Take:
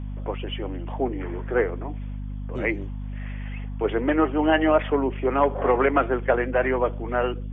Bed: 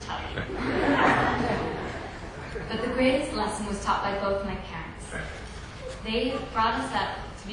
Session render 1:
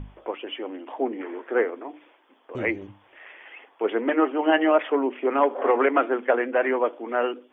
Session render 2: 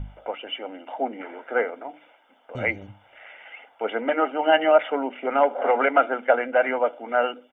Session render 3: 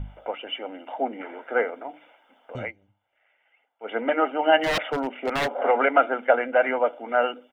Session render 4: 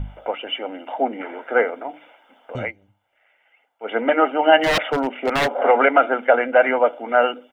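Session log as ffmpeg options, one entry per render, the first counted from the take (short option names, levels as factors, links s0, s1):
-af "bandreject=f=50:t=h:w=6,bandreject=f=100:t=h:w=6,bandreject=f=150:t=h:w=6,bandreject=f=200:t=h:w=6,bandreject=f=250:t=h:w=6,bandreject=f=300:t=h:w=6"
-af "aecho=1:1:1.4:0.71"
-filter_complex "[0:a]asettb=1/sr,asplit=3[s0][s1][s2];[s0]atrim=end=4.604[s3];[s1]atrim=start=4.6:end=5.61,asetpts=PTS-STARTPTS,afade=t=in:d=0.004:c=qsin,afade=t=out:st=1.006:d=0.004:c=qsin,aeval=exprs='0.119*(abs(mod(val(0)/0.119+3,4)-2)-1)':c=same[s4];[s2]atrim=start=5.606[s5];[s3][s4]acrossfade=d=0.004:c1=hsin:c2=qsin[s6];[s6][s5]acrossfade=d=0.004:c1=qsin:c2=hsin,asplit=3[s7][s8][s9];[s7]atrim=end=2.72,asetpts=PTS-STARTPTS,afade=t=out:st=2.55:d=0.17:silence=0.0794328[s10];[s8]atrim=start=2.72:end=3.8,asetpts=PTS-STARTPTS,volume=0.0794[s11];[s9]atrim=start=3.8,asetpts=PTS-STARTPTS,afade=t=in:d=0.17:silence=0.0794328[s12];[s10][s11][s12]concat=n=3:v=0:a=1"
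-af "volume=1.88,alimiter=limit=0.794:level=0:latency=1"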